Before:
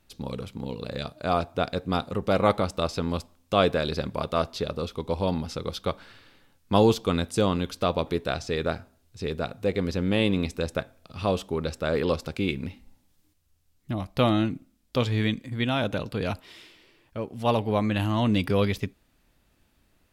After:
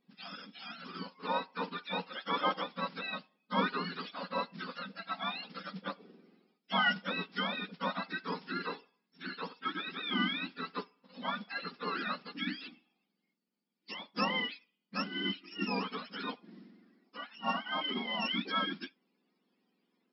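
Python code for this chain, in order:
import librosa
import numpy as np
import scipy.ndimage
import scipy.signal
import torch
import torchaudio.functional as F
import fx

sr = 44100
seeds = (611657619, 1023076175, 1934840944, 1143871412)

y = fx.octave_mirror(x, sr, pivot_hz=810.0)
y = fx.mod_noise(y, sr, seeds[0], snr_db=18)
y = fx.brickwall_bandpass(y, sr, low_hz=180.0, high_hz=5500.0)
y = fx.notch(y, sr, hz=610.0, q=13.0)
y = y * 10.0 ** (-6.5 / 20.0)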